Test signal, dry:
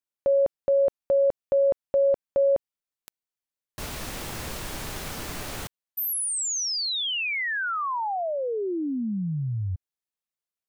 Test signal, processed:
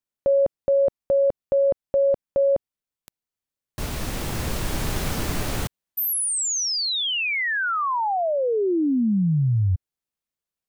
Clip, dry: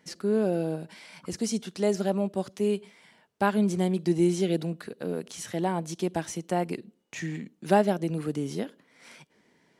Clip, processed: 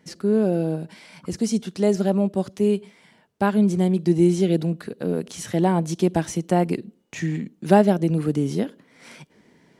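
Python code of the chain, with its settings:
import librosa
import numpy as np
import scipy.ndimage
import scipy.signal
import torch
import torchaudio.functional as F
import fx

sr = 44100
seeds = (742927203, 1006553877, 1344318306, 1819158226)

y = fx.low_shelf(x, sr, hz=380.0, db=7.5)
y = fx.rider(y, sr, range_db=3, speed_s=2.0)
y = y * 10.0 ** (2.0 / 20.0)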